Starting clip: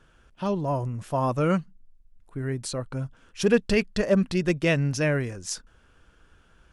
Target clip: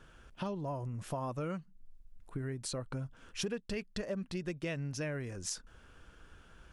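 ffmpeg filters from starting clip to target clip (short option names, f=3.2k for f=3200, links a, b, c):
-af "acompressor=threshold=-37dB:ratio=6,volume=1dB"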